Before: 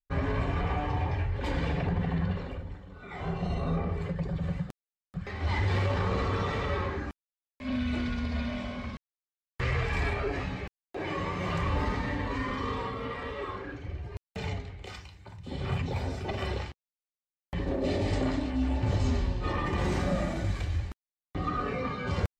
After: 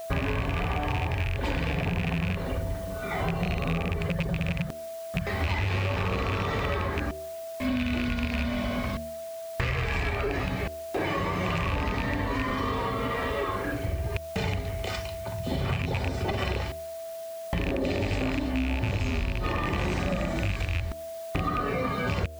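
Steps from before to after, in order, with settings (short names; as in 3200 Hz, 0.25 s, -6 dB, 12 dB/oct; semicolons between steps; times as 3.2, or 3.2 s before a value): rattling part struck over -28 dBFS, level -22 dBFS; de-hum 76.96 Hz, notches 9; in parallel at -10 dB: requantised 8-bit, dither triangular; on the sum: whine 660 Hz -43 dBFS; compressor 6:1, threshold -33 dBFS, peak gain reduction 12.5 dB; gain +8 dB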